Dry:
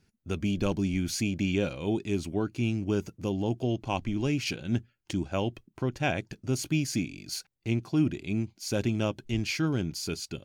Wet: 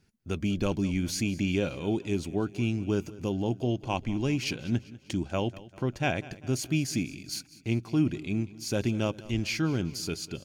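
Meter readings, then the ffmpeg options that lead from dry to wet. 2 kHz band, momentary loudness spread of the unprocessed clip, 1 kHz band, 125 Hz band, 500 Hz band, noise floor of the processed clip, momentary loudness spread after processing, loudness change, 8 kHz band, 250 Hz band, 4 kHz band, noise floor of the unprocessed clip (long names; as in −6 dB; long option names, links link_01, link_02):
0.0 dB, 6 LU, 0.0 dB, 0.0 dB, 0.0 dB, −56 dBFS, 6 LU, 0.0 dB, 0.0 dB, 0.0 dB, 0.0 dB, −73 dBFS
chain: -af "aecho=1:1:197|394|591|788:0.112|0.0561|0.0281|0.014"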